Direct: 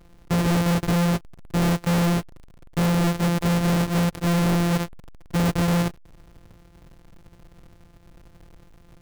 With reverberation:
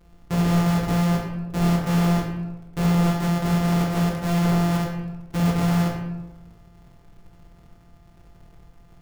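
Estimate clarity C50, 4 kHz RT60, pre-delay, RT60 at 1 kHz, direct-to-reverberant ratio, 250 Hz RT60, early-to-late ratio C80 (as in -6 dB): 3.5 dB, 0.60 s, 14 ms, 1.0 s, -1.5 dB, 1.2 s, 6.0 dB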